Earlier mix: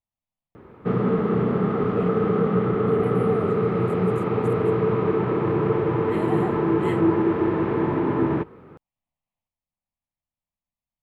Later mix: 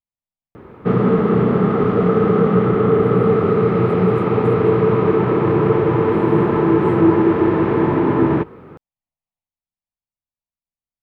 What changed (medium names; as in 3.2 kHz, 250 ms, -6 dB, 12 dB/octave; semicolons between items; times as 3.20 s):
speech -6.0 dB; background +6.5 dB